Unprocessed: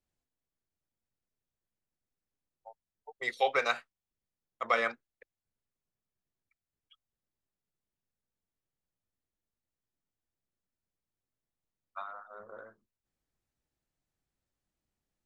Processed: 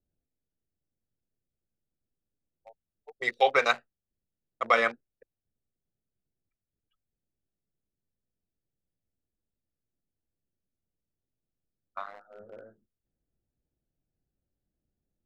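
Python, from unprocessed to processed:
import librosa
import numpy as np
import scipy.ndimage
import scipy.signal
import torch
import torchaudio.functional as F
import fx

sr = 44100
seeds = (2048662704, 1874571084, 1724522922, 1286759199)

y = fx.wiener(x, sr, points=41)
y = y * librosa.db_to_amplitude(5.5)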